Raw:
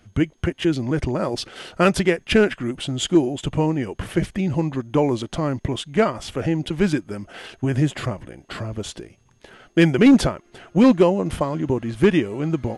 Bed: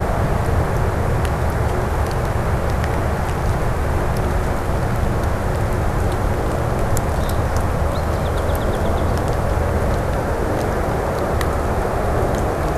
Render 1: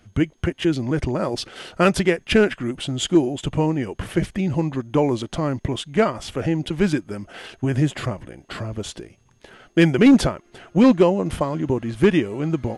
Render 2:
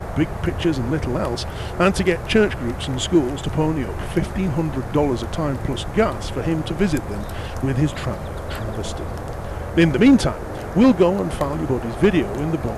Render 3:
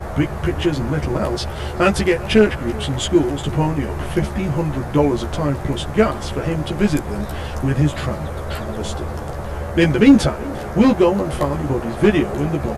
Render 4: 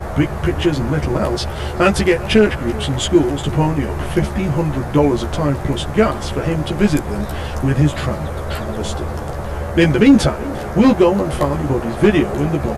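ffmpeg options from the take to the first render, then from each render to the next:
-filter_complex "[0:a]asettb=1/sr,asplit=3[s0][s1][s2];[s0]atrim=end=10.774[s3];[s1]atrim=start=10.77:end=11.2,asetpts=PTS-STARTPTS,afade=t=in:d=0.004:c=qsin,afade=t=out:st=0.426:d=0.004:c=qsin,lowpass=9900[s4];[s2]atrim=start=11.196[s5];[s3][s4]acrossfade=d=0.004:c1=hsin:c2=qsin[s6];[s6][s5]acrossfade=d=0.004:c1=qsin:c2=hsin"
-filter_complex "[1:a]volume=0.316[s0];[0:a][s0]amix=inputs=2:normalize=0"
-filter_complex "[0:a]asplit=2[s0][s1];[s1]adelay=14,volume=0.708[s2];[s0][s2]amix=inputs=2:normalize=0,asplit=2[s3][s4];[s4]adelay=379,volume=0.0891,highshelf=f=4000:g=-8.53[s5];[s3][s5]amix=inputs=2:normalize=0"
-af "volume=1.33,alimiter=limit=0.794:level=0:latency=1"

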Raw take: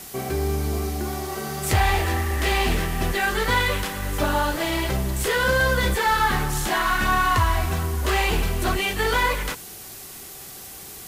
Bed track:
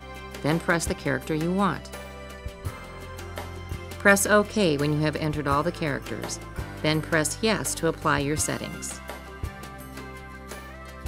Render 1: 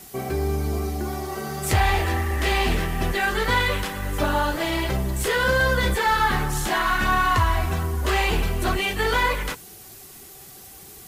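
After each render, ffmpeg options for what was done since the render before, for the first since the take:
-af "afftdn=nr=6:nf=-40"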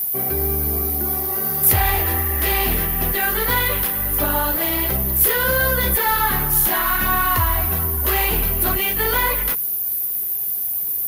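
-filter_complex "[0:a]acrossover=split=420|450|5500[s0][s1][s2][s3];[s1]aeval=exprs='(mod(28.2*val(0)+1,2)-1)/28.2':c=same[s4];[s0][s4][s2][s3]amix=inputs=4:normalize=0,aexciter=amount=13.3:drive=7.5:freq=11000"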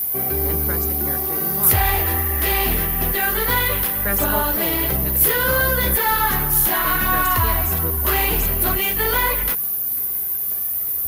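-filter_complex "[1:a]volume=0.355[s0];[0:a][s0]amix=inputs=2:normalize=0"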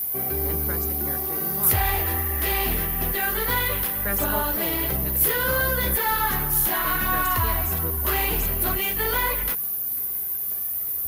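-af "volume=0.596"

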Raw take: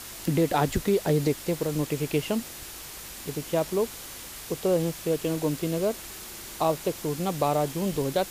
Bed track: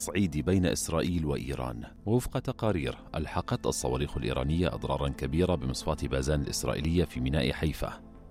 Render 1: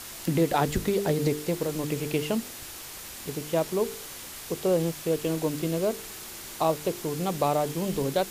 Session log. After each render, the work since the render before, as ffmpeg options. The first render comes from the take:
-af "bandreject=f=50:t=h:w=4,bandreject=f=100:t=h:w=4,bandreject=f=150:t=h:w=4,bandreject=f=200:t=h:w=4,bandreject=f=250:t=h:w=4,bandreject=f=300:t=h:w=4,bandreject=f=350:t=h:w=4,bandreject=f=400:t=h:w=4,bandreject=f=450:t=h:w=4"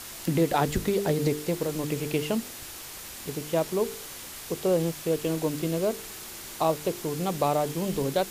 -af anull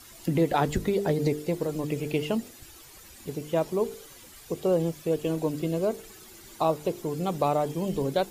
-af "afftdn=nr=12:nf=-41"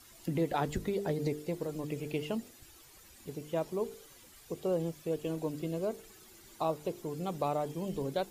-af "volume=0.422"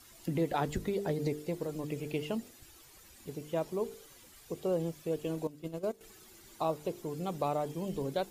-filter_complex "[0:a]asettb=1/sr,asplit=3[s0][s1][s2];[s0]atrim=end=5.474[s3];[s1]atrim=start=5.47:end=6.01,asetpts=PTS-STARTPTS,afade=t=in:d=0.004:c=qsin,afade=t=out:st=0.536:d=0.004:c=qsin,agate=range=0.251:threshold=0.0178:ratio=16:release=100:detection=peak[s4];[s2]atrim=start=6.006[s5];[s3][s4]acrossfade=d=0.004:c1=hsin:c2=qsin[s6];[s6][s5]acrossfade=d=0.004:c1=qsin:c2=hsin"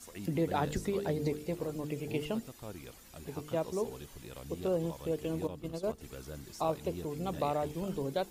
-filter_complex "[1:a]volume=0.141[s0];[0:a][s0]amix=inputs=2:normalize=0"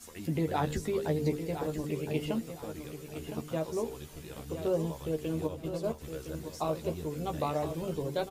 -filter_complex "[0:a]asplit=2[s0][s1];[s1]adelay=13,volume=0.562[s2];[s0][s2]amix=inputs=2:normalize=0,aecho=1:1:1012|2024|3036:0.335|0.0871|0.0226"

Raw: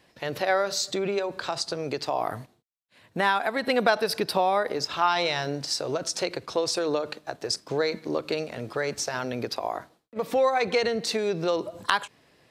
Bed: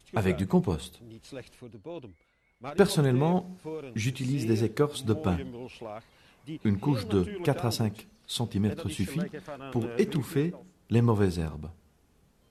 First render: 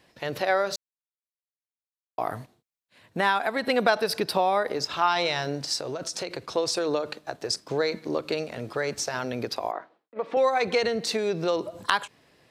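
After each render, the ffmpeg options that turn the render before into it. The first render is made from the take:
-filter_complex "[0:a]asettb=1/sr,asplit=3[s0][s1][s2];[s0]atrim=end=5.784[s3];[s1]atrim=start=5.78:end=6.38,asetpts=PTS-STARTPTS,afade=t=in:d=0.004:c=qsin,afade=t=out:st=0.596:d=0.004:c=qsin,acompressor=threshold=0.0398:ratio=4:attack=3.2:release=140:knee=1:detection=peak[s4];[s2]atrim=start=6.376[s5];[s3][s4]acrossfade=d=0.004:c1=hsin:c2=qsin[s6];[s6][s5]acrossfade=d=0.004:c1=qsin:c2=hsin,asettb=1/sr,asplit=3[s7][s8][s9];[s7]atrim=end=9.714[s10];[s8]atrim=start=9.71:end=10.37,asetpts=PTS-STARTPTS,afade=t=in:d=0.004:c=qsin,afade=t=out:st=0.656:d=0.004:c=qsin,highpass=330,lowpass=2400[s11];[s9]atrim=start=10.366[s12];[s10][s11]acrossfade=d=0.004:c1=hsin:c2=qsin[s13];[s13][s12]acrossfade=d=0.004:c1=qsin:c2=hsin,asplit=3[s14][s15][s16];[s14]atrim=end=0.76,asetpts=PTS-STARTPTS,afade=t=out:st=0.756:d=0.004:c=hsin[s17];[s15]atrim=start=0.76:end=2.18,asetpts=PTS-STARTPTS,volume=0[s18];[s16]atrim=start=2.18,asetpts=PTS-STARTPTS,afade=t=in:d=0.004:c=hsin[s19];[s17][s18][s19]concat=n=3:v=0:a=1"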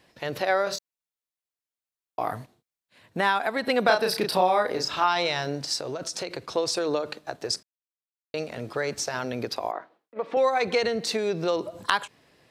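-filter_complex "[0:a]asettb=1/sr,asplit=3[s0][s1][s2];[s0]atrim=end=0.644[s3];[s1]atrim=start=0.64:end=2.33,asetpts=PTS-STARTPTS,afade=t=in:d=0.004:c=qsin,afade=t=out:st=1.686:d=0.004:c=qsin,asplit=2[s4][s5];[s5]adelay=27,volume=0.562[s6];[s4][s6]amix=inputs=2:normalize=0,atrim=end_sample=74529[s7];[s2]atrim=start=2.326[s8];[s3][s7]acrossfade=d=0.004:c1=hsin:c2=qsin[s9];[s9][s8]acrossfade=d=0.004:c1=qsin:c2=hsin,asettb=1/sr,asplit=3[s10][s11][s12];[s10]atrim=end=3.854[s13];[s11]atrim=start=3.85:end=5.04,asetpts=PTS-STARTPTS,afade=t=in:d=0.004:c=qsin,afade=t=out:st=1.186:d=0.004:c=qsin,asplit=2[s14][s15];[s15]adelay=33,volume=0.631[s16];[s14][s16]amix=inputs=2:normalize=0,atrim=end_sample=52479[s17];[s12]atrim=start=5.036[s18];[s13][s17]acrossfade=d=0.004:c1=hsin:c2=qsin[s19];[s19][s18]acrossfade=d=0.004:c1=qsin:c2=hsin,asplit=3[s20][s21][s22];[s20]atrim=end=7.63,asetpts=PTS-STARTPTS,afade=t=out:st=7.626:d=0.004:c=hsin[s23];[s21]atrim=start=7.63:end=8.34,asetpts=PTS-STARTPTS,volume=0[s24];[s22]atrim=start=8.34,asetpts=PTS-STARTPTS,afade=t=in:d=0.004:c=hsin[s25];[s23][s24][s25]concat=n=3:v=0:a=1"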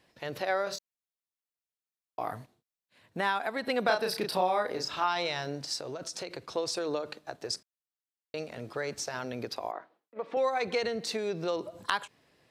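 -af "volume=0.501"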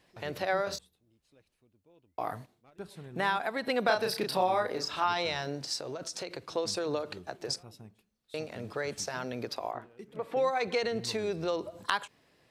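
-filter_complex "[1:a]volume=0.075[s0];[0:a][s0]amix=inputs=2:normalize=0"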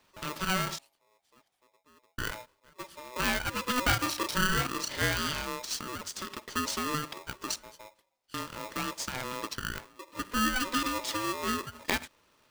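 -af "aeval=exprs='val(0)*sgn(sin(2*PI*750*n/s))':c=same"

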